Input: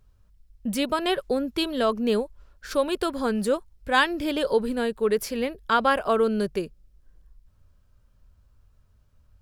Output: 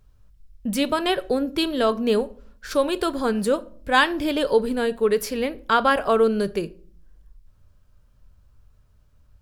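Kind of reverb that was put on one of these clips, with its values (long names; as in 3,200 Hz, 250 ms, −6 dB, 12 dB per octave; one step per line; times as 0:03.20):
rectangular room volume 450 cubic metres, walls furnished, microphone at 0.41 metres
level +2.5 dB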